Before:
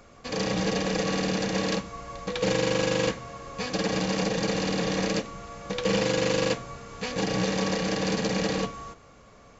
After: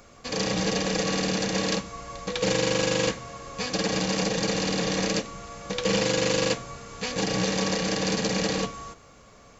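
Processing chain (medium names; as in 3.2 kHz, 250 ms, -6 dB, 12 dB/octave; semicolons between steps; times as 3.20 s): treble shelf 4.3 kHz +7.5 dB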